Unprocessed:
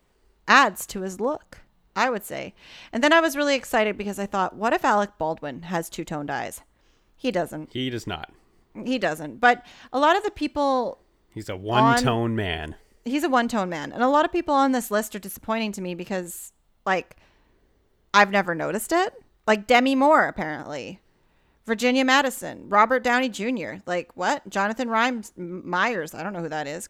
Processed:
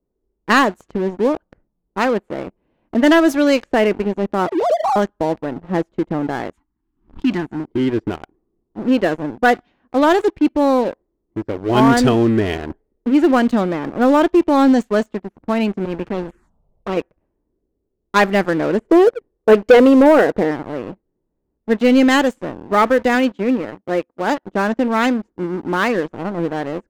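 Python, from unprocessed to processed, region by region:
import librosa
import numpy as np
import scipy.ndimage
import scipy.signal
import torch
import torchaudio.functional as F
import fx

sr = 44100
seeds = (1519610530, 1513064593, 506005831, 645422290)

y = fx.chain(x, sr, fx.sine_speech(),
    fx.steep_lowpass(hz=1100.0, slope=48),
    fx.pre_swell(db_per_s=92.0), at=(4.47, 4.96))
y = fx.chain(y, sr, fx.cheby1_bandstop(low_hz=310.0, high_hz=910.0, order=2),
    fx.high_shelf(hz=4200.0, db=12.0),
    fx.pre_swell(db_per_s=110.0), at=(6.53, 7.6))
y = fx.chain(y, sr, fx.low_shelf(hz=210.0, db=6.0),
    fx.env_phaser(low_hz=240.0, high_hz=1800.0, full_db=-22.0),
    fx.spectral_comp(ratio=2.0), at=(15.85, 16.97))
y = fx.chain(y, sr, fx.lowpass(hz=3000.0, slope=6),
    fx.peak_eq(hz=470.0, db=13.0, octaves=0.47),
    fx.notch(hz=1300.0, q=11.0), at=(18.79, 20.51))
y = fx.chain(y, sr, fx.law_mismatch(coded='A'),
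    fx.highpass(hz=110.0, slope=6), at=(23.15, 24.43))
y = fx.env_lowpass(y, sr, base_hz=690.0, full_db=-14.5)
y = fx.curve_eq(y, sr, hz=(140.0, 330.0, 790.0), db=(0, 7, -3))
y = fx.leveller(y, sr, passes=3)
y = F.gain(torch.from_numpy(y), -5.0).numpy()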